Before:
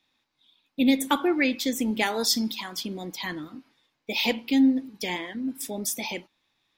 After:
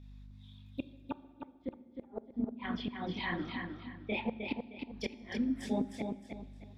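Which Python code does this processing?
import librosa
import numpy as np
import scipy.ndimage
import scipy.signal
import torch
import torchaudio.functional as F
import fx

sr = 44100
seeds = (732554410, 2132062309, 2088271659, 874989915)

y = fx.env_lowpass_down(x, sr, base_hz=620.0, full_db=-23.0)
y = fx.lowpass(y, sr, hz=3300.0, slope=24, at=(1.62, 4.29))
y = fx.chorus_voices(y, sr, voices=6, hz=1.4, base_ms=26, depth_ms=3.0, mix_pct=55)
y = fx.add_hum(y, sr, base_hz=50, snr_db=20)
y = fx.gate_flip(y, sr, shuts_db=-25.0, range_db=-38)
y = fx.echo_feedback(y, sr, ms=309, feedback_pct=28, wet_db=-5.5)
y = fx.rev_fdn(y, sr, rt60_s=1.4, lf_ratio=1.5, hf_ratio=0.9, size_ms=25.0, drr_db=15.5)
y = y * 10.0 ** (1.0 / 20.0)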